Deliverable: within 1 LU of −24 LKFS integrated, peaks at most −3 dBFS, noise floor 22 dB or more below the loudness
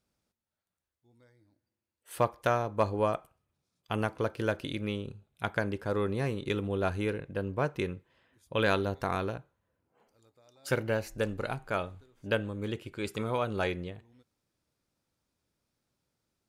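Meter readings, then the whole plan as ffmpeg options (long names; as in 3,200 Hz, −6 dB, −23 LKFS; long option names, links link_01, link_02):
integrated loudness −32.5 LKFS; sample peak −14.5 dBFS; target loudness −24.0 LKFS
→ -af "volume=8.5dB"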